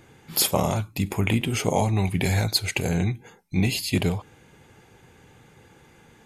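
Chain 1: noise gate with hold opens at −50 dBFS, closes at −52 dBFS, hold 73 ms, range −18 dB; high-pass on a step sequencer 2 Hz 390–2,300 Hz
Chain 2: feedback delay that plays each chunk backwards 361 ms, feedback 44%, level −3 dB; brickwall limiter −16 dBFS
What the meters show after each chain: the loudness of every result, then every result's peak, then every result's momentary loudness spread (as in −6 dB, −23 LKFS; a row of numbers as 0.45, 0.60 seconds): −24.5, −26.5 LKFS; −1.5, −16.0 dBFS; 11, 13 LU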